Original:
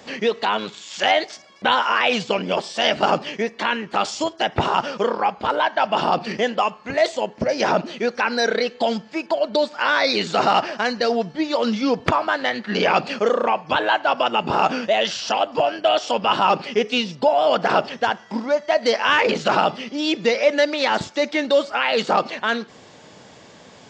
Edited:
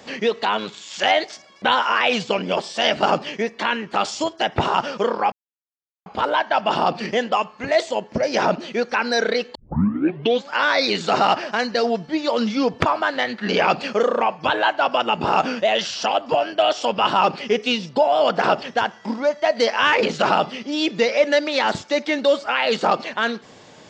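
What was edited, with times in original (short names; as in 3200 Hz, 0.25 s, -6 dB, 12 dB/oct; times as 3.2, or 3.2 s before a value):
5.32 insert silence 0.74 s
8.81 tape start 0.96 s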